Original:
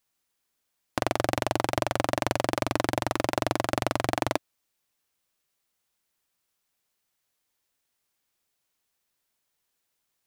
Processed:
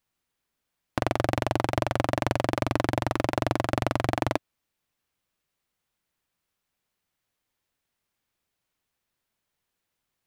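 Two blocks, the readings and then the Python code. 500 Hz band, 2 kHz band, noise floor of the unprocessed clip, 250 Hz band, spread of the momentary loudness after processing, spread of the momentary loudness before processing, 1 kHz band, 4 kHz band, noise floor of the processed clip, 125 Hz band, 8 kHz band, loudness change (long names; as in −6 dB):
+0.5 dB, −0.5 dB, −79 dBFS, +2.0 dB, 2 LU, 2 LU, 0.0 dB, −2.5 dB, −83 dBFS, +4.5 dB, −5.5 dB, +0.5 dB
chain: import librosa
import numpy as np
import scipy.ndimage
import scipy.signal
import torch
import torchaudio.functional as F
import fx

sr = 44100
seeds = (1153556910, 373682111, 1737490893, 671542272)

y = fx.bass_treble(x, sr, bass_db=5, treble_db=-6)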